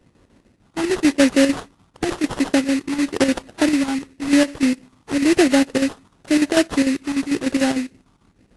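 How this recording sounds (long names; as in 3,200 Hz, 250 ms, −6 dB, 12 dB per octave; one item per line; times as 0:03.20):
chopped level 6.7 Hz, depth 60%, duty 70%
phaser sweep stages 6, 0.95 Hz, lowest notch 580–3,000 Hz
aliases and images of a low sample rate 2,300 Hz, jitter 20%
AAC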